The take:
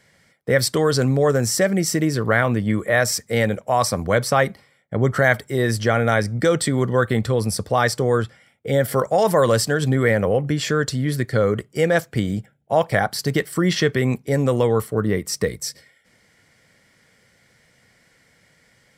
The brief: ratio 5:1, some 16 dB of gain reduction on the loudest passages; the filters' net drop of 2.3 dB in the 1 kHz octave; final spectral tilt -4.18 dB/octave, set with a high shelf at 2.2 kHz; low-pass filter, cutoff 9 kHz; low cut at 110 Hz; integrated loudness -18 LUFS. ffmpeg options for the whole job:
-af "highpass=110,lowpass=9000,equalizer=f=1000:t=o:g=-4.5,highshelf=f=2200:g=5,acompressor=threshold=0.0251:ratio=5,volume=6.68"

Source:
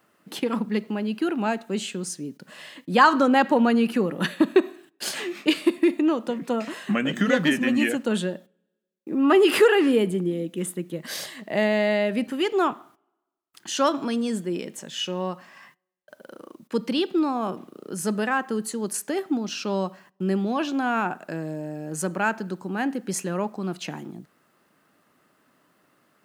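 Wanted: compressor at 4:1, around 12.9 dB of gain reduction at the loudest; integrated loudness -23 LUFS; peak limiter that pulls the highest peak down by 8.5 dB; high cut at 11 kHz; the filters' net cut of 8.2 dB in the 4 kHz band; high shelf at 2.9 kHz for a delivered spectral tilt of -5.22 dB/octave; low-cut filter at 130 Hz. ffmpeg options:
-af "highpass=130,lowpass=11000,highshelf=f=2900:g=-5.5,equalizer=f=4000:t=o:g=-8,acompressor=threshold=0.0398:ratio=4,volume=3.76,alimiter=limit=0.211:level=0:latency=1"

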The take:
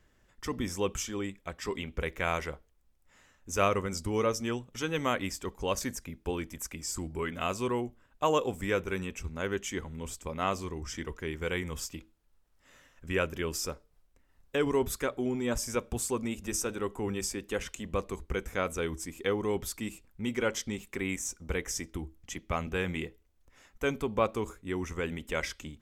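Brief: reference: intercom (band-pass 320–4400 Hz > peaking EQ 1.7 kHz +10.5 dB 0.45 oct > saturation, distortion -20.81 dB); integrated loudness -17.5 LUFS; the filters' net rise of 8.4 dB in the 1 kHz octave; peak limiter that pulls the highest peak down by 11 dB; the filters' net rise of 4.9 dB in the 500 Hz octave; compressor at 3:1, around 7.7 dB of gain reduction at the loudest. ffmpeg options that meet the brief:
-af "equalizer=f=500:t=o:g=5,equalizer=f=1000:t=o:g=7.5,acompressor=threshold=0.0501:ratio=3,alimiter=limit=0.0631:level=0:latency=1,highpass=320,lowpass=4400,equalizer=f=1700:t=o:w=0.45:g=10.5,asoftclip=threshold=0.0668,volume=10"

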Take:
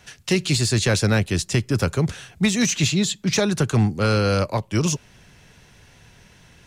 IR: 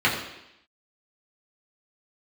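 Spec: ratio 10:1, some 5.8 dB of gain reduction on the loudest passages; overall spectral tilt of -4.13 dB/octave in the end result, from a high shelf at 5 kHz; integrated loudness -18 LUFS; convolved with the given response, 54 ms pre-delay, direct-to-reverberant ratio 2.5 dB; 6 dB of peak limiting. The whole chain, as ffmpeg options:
-filter_complex "[0:a]highshelf=f=5000:g=7,acompressor=threshold=0.1:ratio=10,alimiter=limit=0.133:level=0:latency=1,asplit=2[s0][s1];[1:a]atrim=start_sample=2205,adelay=54[s2];[s1][s2]afir=irnorm=-1:irlink=0,volume=0.1[s3];[s0][s3]amix=inputs=2:normalize=0,volume=2.11"

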